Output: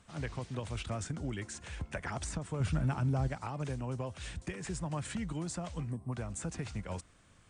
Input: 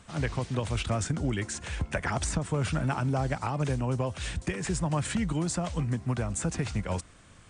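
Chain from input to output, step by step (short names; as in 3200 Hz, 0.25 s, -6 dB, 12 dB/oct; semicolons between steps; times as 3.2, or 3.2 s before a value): 2.6–3.28 low shelf 200 Hz +10 dB; 5.91–6.13 spectral gain 1200–7800 Hz -16 dB; gain -8.5 dB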